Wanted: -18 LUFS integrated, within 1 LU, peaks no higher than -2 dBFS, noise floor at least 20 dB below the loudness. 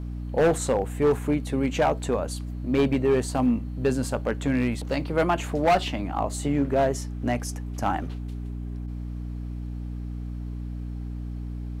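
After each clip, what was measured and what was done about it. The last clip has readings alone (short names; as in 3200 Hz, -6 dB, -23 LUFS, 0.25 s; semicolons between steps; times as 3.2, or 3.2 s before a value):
clipped 1.3%; flat tops at -15.5 dBFS; hum 60 Hz; harmonics up to 300 Hz; hum level -30 dBFS; loudness -27.0 LUFS; peak -15.5 dBFS; loudness target -18.0 LUFS
-> clip repair -15.5 dBFS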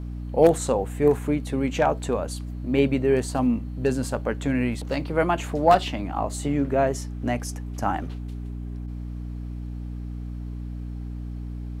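clipped 0.0%; hum 60 Hz; harmonics up to 300 Hz; hum level -30 dBFS
-> notches 60/120/180/240/300 Hz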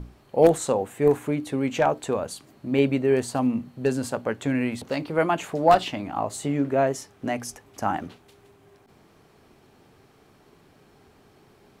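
hum none; loudness -24.5 LUFS; peak -5.5 dBFS; loudness target -18.0 LUFS
-> gain +6.5 dB; limiter -2 dBFS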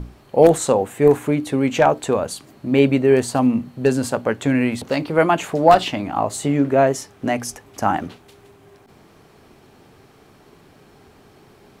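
loudness -18.5 LUFS; peak -2.0 dBFS; noise floor -51 dBFS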